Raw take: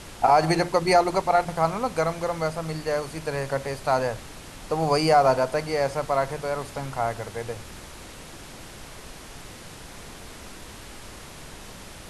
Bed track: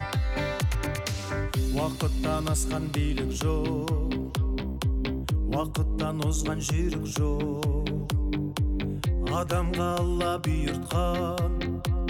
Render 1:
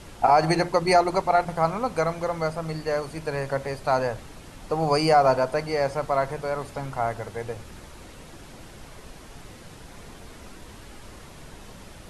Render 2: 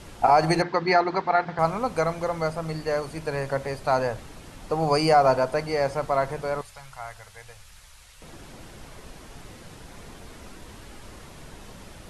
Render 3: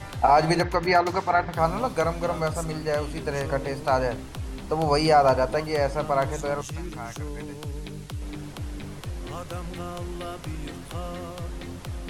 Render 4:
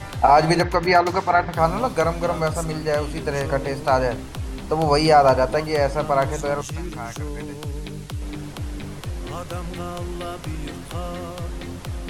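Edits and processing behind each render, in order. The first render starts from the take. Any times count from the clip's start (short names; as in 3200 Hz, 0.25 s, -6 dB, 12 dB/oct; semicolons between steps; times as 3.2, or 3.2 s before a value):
denoiser 6 dB, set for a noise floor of -43 dBFS
0.62–1.59 speaker cabinet 160–4600 Hz, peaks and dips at 580 Hz -7 dB, 1700 Hz +7 dB, 2800 Hz -3 dB; 6.61–8.22 passive tone stack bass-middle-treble 10-0-10
add bed track -8 dB
gain +4 dB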